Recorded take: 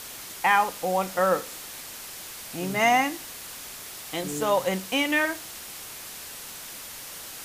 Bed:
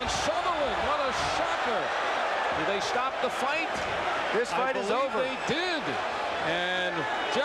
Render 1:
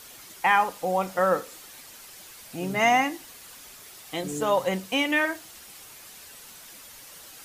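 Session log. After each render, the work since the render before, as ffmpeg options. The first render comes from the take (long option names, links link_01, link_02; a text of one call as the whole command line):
ffmpeg -i in.wav -af "afftdn=noise_reduction=8:noise_floor=-40" out.wav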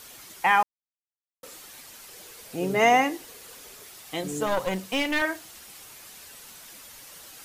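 ffmpeg -i in.wav -filter_complex "[0:a]asettb=1/sr,asplit=3[link_01][link_02][link_03];[link_01]atrim=end=2.094[link_04];[link_02]atrim=start=2.09:end=3.86,asetpts=PTS-STARTPTS,afade=type=in:duration=0.004:curve=qsin,afade=type=out:start_time=1.766:duration=0.004:curve=qsin,equalizer=frequency=450:width_type=o:width=0.52:gain=11[link_05];[link_03]atrim=start=3.856[link_06];[link_04][link_05]acrossfade=duration=0.004:curve1=hsin:curve2=qsin[link_07];[link_07][link_06]acrossfade=duration=0.004:curve1=qsin:curve2=hsin,asettb=1/sr,asplit=3[link_08][link_09][link_10];[link_08]atrim=end=4.464[link_11];[link_09]atrim=start=4.46:end=5.22,asetpts=PTS-STARTPTS,afade=type=in:duration=0.004:curve=qsin,afade=type=out:start_time=0.756:duration=0.004:curve=qsin,aeval=exprs='clip(val(0),-1,0.0335)':channel_layout=same[link_12];[link_10]atrim=start=5.216[link_13];[link_11][link_12]acrossfade=duration=0.004:curve1=hsin:curve2=qsin[link_14];[link_14][link_13]acrossfade=duration=0.004:curve1=qsin:curve2=hsin,asplit=3[link_15][link_16][link_17];[link_15]atrim=end=0.63,asetpts=PTS-STARTPTS,afade=type=out:start_time=0.626:duration=0.004:curve=hsin[link_18];[link_16]atrim=start=0.63:end=1.43,asetpts=PTS-STARTPTS,volume=0[link_19];[link_17]atrim=start=1.43,asetpts=PTS-STARTPTS,afade=type=in:duration=0.004:curve=hsin[link_20];[link_18][link_19][link_20]concat=n=3:v=0:a=1" out.wav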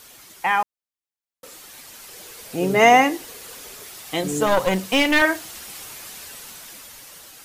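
ffmpeg -i in.wav -af "dynaudnorm=framelen=530:gausssize=7:maxgain=11.5dB" out.wav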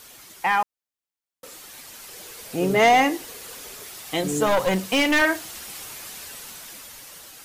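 ffmpeg -i in.wav -af "asoftclip=type=tanh:threshold=-10dB" out.wav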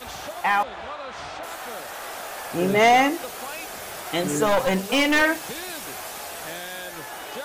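ffmpeg -i in.wav -i bed.wav -filter_complex "[1:a]volume=-7.5dB[link_01];[0:a][link_01]amix=inputs=2:normalize=0" out.wav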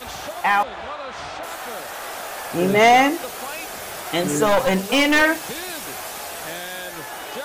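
ffmpeg -i in.wav -af "volume=3dB" out.wav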